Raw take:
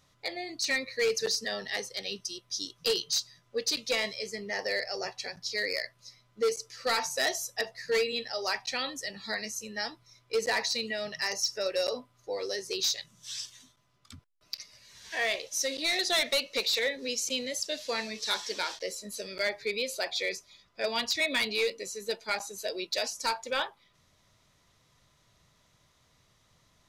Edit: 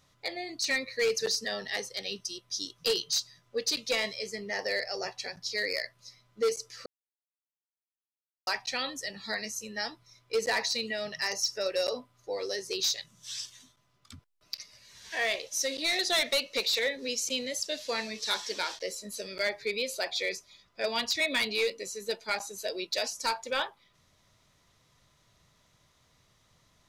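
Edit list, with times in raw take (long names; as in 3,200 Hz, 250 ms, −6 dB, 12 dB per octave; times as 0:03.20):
0:06.86–0:08.47: silence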